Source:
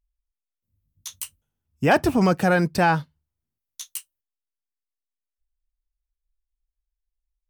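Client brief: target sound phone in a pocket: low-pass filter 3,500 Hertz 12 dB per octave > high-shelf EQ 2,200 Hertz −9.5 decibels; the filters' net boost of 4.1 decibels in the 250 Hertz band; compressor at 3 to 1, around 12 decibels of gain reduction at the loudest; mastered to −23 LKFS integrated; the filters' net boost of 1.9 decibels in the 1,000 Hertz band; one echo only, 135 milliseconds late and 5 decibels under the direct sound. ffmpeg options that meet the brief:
ffmpeg -i in.wav -af "equalizer=frequency=250:width_type=o:gain=6,equalizer=frequency=1000:width_type=o:gain=4,acompressor=threshold=-28dB:ratio=3,lowpass=3500,highshelf=frequency=2200:gain=-9.5,aecho=1:1:135:0.562,volume=5.5dB" out.wav

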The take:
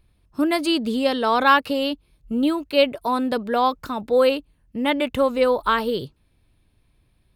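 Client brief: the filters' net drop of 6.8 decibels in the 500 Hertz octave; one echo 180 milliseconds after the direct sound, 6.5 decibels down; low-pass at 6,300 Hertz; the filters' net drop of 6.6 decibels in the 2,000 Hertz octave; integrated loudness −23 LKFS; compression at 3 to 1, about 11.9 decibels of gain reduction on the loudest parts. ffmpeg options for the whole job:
ffmpeg -i in.wav -af "lowpass=6300,equalizer=frequency=500:width_type=o:gain=-7,equalizer=frequency=2000:width_type=o:gain=-8.5,acompressor=threshold=-31dB:ratio=3,aecho=1:1:180:0.473,volume=9.5dB" out.wav

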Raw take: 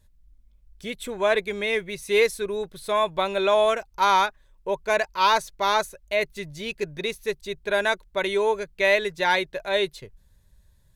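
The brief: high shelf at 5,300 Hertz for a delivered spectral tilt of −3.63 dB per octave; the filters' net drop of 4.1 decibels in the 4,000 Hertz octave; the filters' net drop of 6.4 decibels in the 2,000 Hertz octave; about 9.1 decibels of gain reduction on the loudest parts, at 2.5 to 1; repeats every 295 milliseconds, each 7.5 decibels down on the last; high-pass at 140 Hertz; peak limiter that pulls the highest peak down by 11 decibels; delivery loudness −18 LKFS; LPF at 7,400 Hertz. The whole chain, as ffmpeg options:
ffmpeg -i in.wav -af "highpass=140,lowpass=7400,equalizer=frequency=2000:width_type=o:gain=-8,equalizer=frequency=4000:width_type=o:gain=-4,highshelf=frequency=5300:gain=5.5,acompressor=threshold=-31dB:ratio=2.5,alimiter=level_in=5.5dB:limit=-24dB:level=0:latency=1,volume=-5.5dB,aecho=1:1:295|590|885|1180|1475:0.422|0.177|0.0744|0.0312|0.0131,volume=20.5dB" out.wav

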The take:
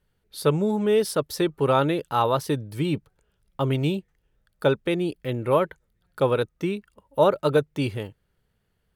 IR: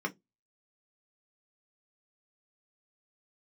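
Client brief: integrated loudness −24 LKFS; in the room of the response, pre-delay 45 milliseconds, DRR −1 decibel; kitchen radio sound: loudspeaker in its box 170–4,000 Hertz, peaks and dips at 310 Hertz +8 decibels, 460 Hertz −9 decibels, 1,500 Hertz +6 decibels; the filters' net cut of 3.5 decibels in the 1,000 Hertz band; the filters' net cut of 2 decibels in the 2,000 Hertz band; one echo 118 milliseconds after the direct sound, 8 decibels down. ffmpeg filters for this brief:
-filter_complex "[0:a]equalizer=frequency=1000:width_type=o:gain=-3.5,equalizer=frequency=2000:width_type=o:gain=-7,aecho=1:1:118:0.398,asplit=2[link_01][link_02];[1:a]atrim=start_sample=2205,adelay=45[link_03];[link_02][link_03]afir=irnorm=-1:irlink=0,volume=-4.5dB[link_04];[link_01][link_04]amix=inputs=2:normalize=0,highpass=170,equalizer=frequency=310:width_type=q:width=4:gain=8,equalizer=frequency=460:width_type=q:width=4:gain=-9,equalizer=frequency=1500:width_type=q:width=4:gain=6,lowpass=frequency=4000:width=0.5412,lowpass=frequency=4000:width=1.3066,volume=-3dB"

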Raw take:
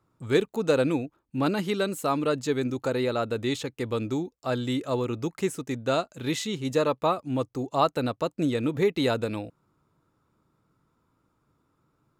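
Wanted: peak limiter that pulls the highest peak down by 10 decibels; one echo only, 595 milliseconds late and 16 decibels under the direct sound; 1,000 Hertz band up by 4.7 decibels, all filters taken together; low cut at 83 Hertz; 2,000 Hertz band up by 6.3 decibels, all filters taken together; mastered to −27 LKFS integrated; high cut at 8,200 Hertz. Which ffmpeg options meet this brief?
ffmpeg -i in.wav -af "highpass=83,lowpass=8200,equalizer=frequency=1000:width_type=o:gain=4,equalizer=frequency=2000:width_type=o:gain=7,alimiter=limit=-16dB:level=0:latency=1,aecho=1:1:595:0.158,volume=1.5dB" out.wav

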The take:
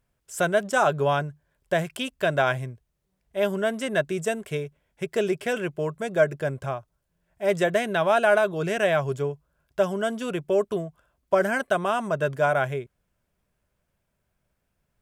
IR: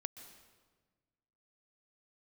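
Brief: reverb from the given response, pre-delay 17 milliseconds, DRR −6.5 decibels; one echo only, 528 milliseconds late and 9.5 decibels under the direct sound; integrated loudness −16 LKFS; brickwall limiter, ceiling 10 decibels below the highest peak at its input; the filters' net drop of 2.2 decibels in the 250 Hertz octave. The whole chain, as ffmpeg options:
-filter_complex "[0:a]equalizer=frequency=250:width_type=o:gain=-3.5,alimiter=limit=-18dB:level=0:latency=1,aecho=1:1:528:0.335,asplit=2[link_01][link_02];[1:a]atrim=start_sample=2205,adelay=17[link_03];[link_02][link_03]afir=irnorm=-1:irlink=0,volume=9dB[link_04];[link_01][link_04]amix=inputs=2:normalize=0,volume=6dB"

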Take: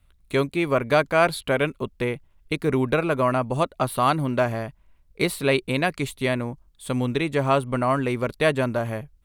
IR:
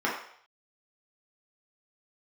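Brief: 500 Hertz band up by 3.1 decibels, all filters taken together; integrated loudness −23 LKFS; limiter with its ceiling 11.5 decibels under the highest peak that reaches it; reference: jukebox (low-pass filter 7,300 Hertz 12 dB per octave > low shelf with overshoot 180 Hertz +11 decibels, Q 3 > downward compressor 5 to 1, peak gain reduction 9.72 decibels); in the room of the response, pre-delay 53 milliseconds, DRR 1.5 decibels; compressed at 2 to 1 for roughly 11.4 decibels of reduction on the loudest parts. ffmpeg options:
-filter_complex "[0:a]equalizer=frequency=500:width_type=o:gain=6,acompressor=threshold=-33dB:ratio=2,alimiter=level_in=3dB:limit=-24dB:level=0:latency=1,volume=-3dB,asplit=2[link_01][link_02];[1:a]atrim=start_sample=2205,adelay=53[link_03];[link_02][link_03]afir=irnorm=-1:irlink=0,volume=-13.5dB[link_04];[link_01][link_04]amix=inputs=2:normalize=0,lowpass=7300,lowshelf=frequency=180:width_type=q:width=3:gain=11,acompressor=threshold=-29dB:ratio=5,volume=11dB"

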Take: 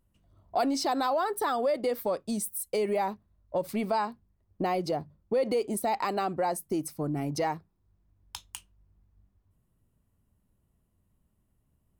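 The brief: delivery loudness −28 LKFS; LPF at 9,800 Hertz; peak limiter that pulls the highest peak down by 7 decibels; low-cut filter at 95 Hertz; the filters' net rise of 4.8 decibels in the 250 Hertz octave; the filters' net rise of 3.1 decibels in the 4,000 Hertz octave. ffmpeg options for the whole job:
ffmpeg -i in.wav -af "highpass=95,lowpass=9800,equalizer=frequency=250:width_type=o:gain=6,equalizer=frequency=4000:width_type=o:gain=4,volume=4dB,alimiter=limit=-18.5dB:level=0:latency=1" out.wav

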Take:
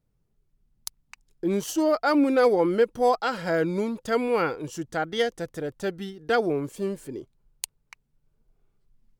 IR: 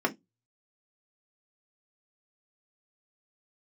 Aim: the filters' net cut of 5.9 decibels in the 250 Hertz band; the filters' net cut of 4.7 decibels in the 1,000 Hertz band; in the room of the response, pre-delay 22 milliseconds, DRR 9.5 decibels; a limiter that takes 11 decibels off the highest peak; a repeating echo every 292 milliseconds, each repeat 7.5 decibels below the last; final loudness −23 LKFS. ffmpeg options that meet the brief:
-filter_complex "[0:a]equalizer=frequency=250:width_type=o:gain=-7.5,equalizer=frequency=1000:width_type=o:gain=-6.5,alimiter=limit=-20dB:level=0:latency=1,aecho=1:1:292|584|876|1168|1460:0.422|0.177|0.0744|0.0312|0.0131,asplit=2[link_01][link_02];[1:a]atrim=start_sample=2205,adelay=22[link_03];[link_02][link_03]afir=irnorm=-1:irlink=0,volume=-20dB[link_04];[link_01][link_04]amix=inputs=2:normalize=0,volume=6.5dB"

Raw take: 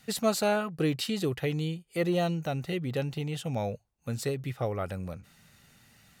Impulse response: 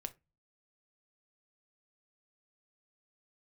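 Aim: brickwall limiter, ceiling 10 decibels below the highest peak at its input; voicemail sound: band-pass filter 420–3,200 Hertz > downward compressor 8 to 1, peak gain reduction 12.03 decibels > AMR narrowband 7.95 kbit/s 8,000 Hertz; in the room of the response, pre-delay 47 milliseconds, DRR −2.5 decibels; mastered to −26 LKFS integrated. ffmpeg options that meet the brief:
-filter_complex "[0:a]alimiter=limit=-23.5dB:level=0:latency=1,asplit=2[link_01][link_02];[1:a]atrim=start_sample=2205,adelay=47[link_03];[link_02][link_03]afir=irnorm=-1:irlink=0,volume=5.5dB[link_04];[link_01][link_04]amix=inputs=2:normalize=0,highpass=420,lowpass=3200,acompressor=threshold=-36dB:ratio=8,volume=16dB" -ar 8000 -c:a libopencore_amrnb -b:a 7950

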